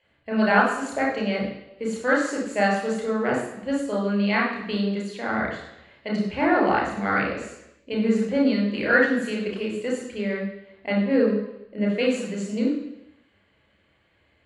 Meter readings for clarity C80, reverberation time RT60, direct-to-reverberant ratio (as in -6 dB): 7.0 dB, 0.85 s, -3.0 dB